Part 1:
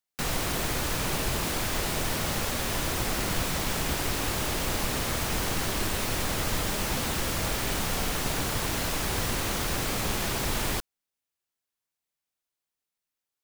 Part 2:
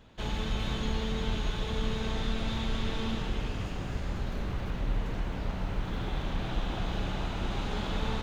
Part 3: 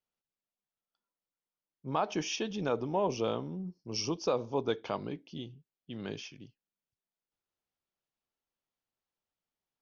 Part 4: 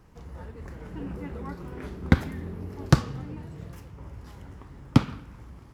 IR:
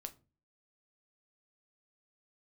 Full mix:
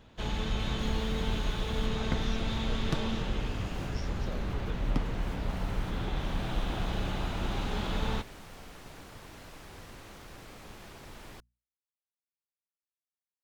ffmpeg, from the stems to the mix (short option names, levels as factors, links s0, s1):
-filter_complex "[0:a]aemphasis=mode=reproduction:type=cd,bandreject=f=60:t=h:w=6,bandreject=f=120:t=h:w=6,bandreject=f=180:t=h:w=6,bandreject=f=240:t=h:w=6,adelay=600,volume=0.126[s0];[1:a]volume=1[s1];[2:a]volume=0.168,asplit=2[s2][s3];[3:a]volume=0.2[s4];[s3]apad=whole_len=618733[s5];[s0][s5]sidechaincompress=threshold=0.00126:ratio=8:attack=16:release=188[s6];[s6][s1][s2][s4]amix=inputs=4:normalize=0"